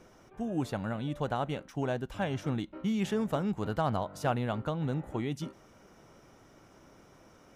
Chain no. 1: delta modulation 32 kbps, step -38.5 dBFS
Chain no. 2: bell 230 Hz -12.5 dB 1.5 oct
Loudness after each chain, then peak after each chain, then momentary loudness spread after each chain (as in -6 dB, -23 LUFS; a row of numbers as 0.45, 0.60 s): -34.5, -38.5 LUFS; -19.0, -19.0 dBFS; 13, 8 LU